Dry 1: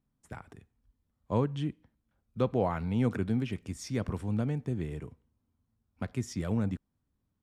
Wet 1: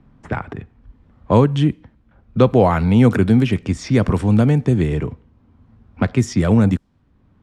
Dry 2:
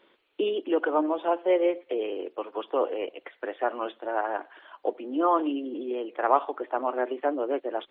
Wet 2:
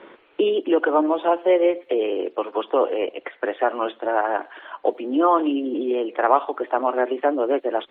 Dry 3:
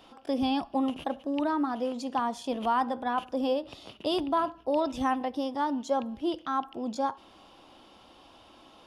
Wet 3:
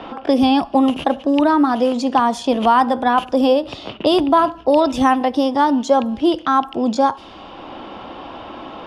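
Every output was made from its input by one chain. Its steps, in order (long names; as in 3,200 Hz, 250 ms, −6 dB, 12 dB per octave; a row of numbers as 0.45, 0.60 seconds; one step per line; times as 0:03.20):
low-pass that shuts in the quiet parts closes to 2,100 Hz, open at −26.5 dBFS
multiband upward and downward compressor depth 40%
normalise the peak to −2 dBFS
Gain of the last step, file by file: +16.5, +6.5, +13.5 decibels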